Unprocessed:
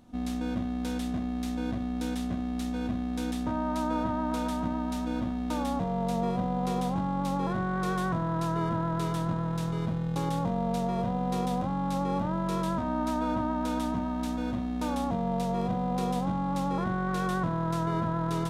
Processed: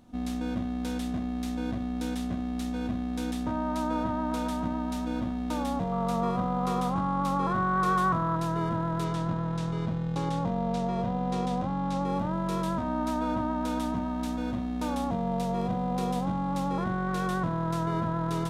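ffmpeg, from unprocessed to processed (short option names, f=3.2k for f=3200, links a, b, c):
-filter_complex "[0:a]asettb=1/sr,asplit=3[a][b][c];[a]atrim=end=5.924[d];[b]atrim=start=5.92:end=8.36,asetpts=PTS-STARTPTS,afade=t=in:d=0.004:c=qsin,afade=t=out:st=2.436:d=0.004:c=qsin,equalizer=f=1.2k:w=3.6:g=13[e];[c]atrim=start=8.356[f];[d][e]acrossfade=d=0.004:c1=hsin:c2=qsin[g];[g][f]acrossfade=d=0.004:c1=qsin:c2=hsin,asettb=1/sr,asplit=3[h][i][j];[h]atrim=end=9.044[k];[i]atrim=start=9.04:end=12.05,asetpts=PTS-STARTPTS,afade=t=in:d=0.004:c=qsin,afade=t=out:st=3.006:d=0.004:c=qsin,lowpass=7.4k[l];[j]atrim=start=12.046[m];[k][l]acrossfade=d=0.004:c1=hsin:c2=qsin[n];[n][m]acrossfade=d=0.004:c1=qsin:c2=hsin"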